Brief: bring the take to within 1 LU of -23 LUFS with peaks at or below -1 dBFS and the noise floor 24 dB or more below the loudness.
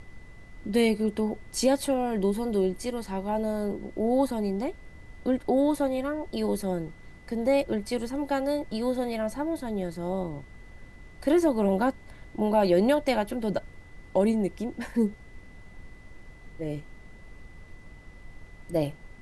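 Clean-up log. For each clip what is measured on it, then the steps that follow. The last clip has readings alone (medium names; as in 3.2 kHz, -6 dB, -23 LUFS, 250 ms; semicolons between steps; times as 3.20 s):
steady tone 2 kHz; tone level -55 dBFS; noise floor -49 dBFS; noise floor target -52 dBFS; loudness -28.0 LUFS; peak level -11.0 dBFS; loudness target -23.0 LUFS
-> band-stop 2 kHz, Q 30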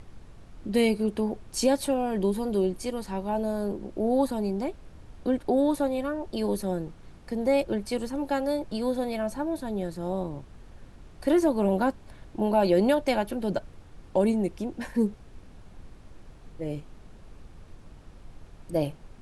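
steady tone not found; noise floor -50 dBFS; noise floor target -52 dBFS
-> noise print and reduce 6 dB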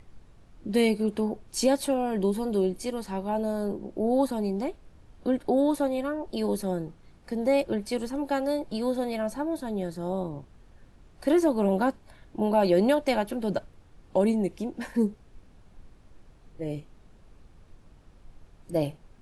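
noise floor -56 dBFS; loudness -28.0 LUFS; peak level -11.5 dBFS; loudness target -23.0 LUFS
-> trim +5 dB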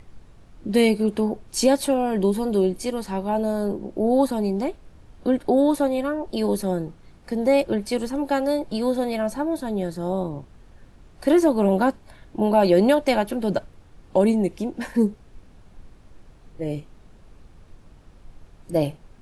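loudness -23.0 LUFS; peak level -6.5 dBFS; noise floor -51 dBFS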